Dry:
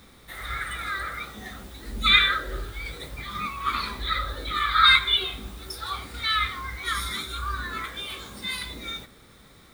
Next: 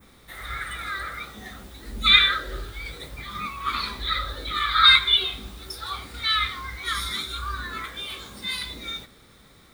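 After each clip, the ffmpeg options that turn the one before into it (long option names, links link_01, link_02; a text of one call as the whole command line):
ffmpeg -i in.wav -af "adynamicequalizer=threshold=0.0158:dfrequency=4100:dqfactor=1.1:tfrequency=4100:tqfactor=1.1:attack=5:release=100:ratio=0.375:range=2.5:mode=boostabove:tftype=bell,volume=-1dB" out.wav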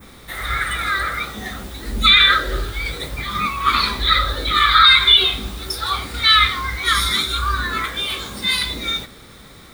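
ffmpeg -i in.wav -af "alimiter=level_in=11.5dB:limit=-1dB:release=50:level=0:latency=1,volume=-1dB" out.wav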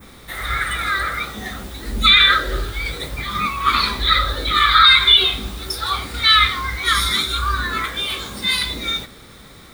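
ffmpeg -i in.wav -af anull out.wav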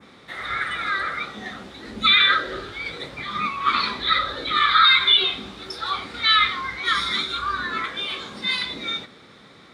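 ffmpeg -i in.wav -af "highpass=160,lowpass=4500,volume=-3.5dB" out.wav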